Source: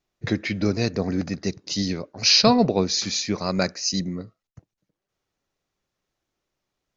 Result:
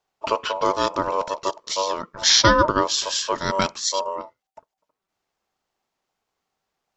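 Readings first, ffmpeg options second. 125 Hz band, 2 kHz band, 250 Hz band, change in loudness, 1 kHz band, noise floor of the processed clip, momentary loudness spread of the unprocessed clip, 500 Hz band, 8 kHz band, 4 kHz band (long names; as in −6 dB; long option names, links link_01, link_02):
−5.0 dB, +5.0 dB, −6.5 dB, +1.5 dB, +8.5 dB, −84 dBFS, 13 LU, +2.0 dB, can't be measured, +1.0 dB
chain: -af "aeval=exprs='val(0)*sin(2*PI*770*n/s)':channel_layout=same,volume=4dB"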